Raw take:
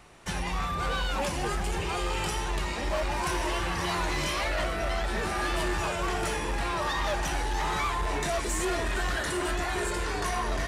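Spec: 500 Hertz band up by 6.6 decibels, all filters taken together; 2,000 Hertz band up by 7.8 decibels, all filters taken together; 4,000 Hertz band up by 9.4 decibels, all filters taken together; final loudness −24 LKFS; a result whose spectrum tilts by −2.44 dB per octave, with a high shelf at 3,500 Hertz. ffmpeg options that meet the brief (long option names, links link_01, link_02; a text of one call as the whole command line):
ffmpeg -i in.wav -af "equalizer=frequency=500:width_type=o:gain=8.5,equalizer=frequency=2000:width_type=o:gain=6,highshelf=frequency=3500:gain=6.5,equalizer=frequency=4000:width_type=o:gain=5.5,volume=-0.5dB" out.wav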